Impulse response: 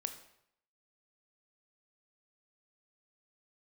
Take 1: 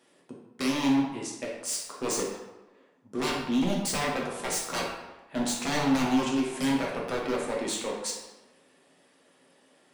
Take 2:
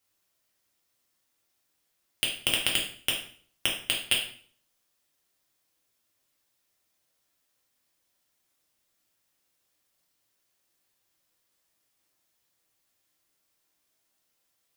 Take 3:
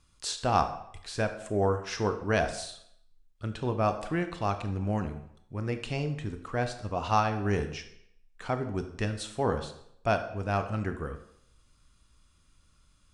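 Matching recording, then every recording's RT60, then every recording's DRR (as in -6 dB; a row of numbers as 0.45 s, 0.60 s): 3; 1.1 s, 0.50 s, 0.70 s; -3.0 dB, -2.5 dB, 7.5 dB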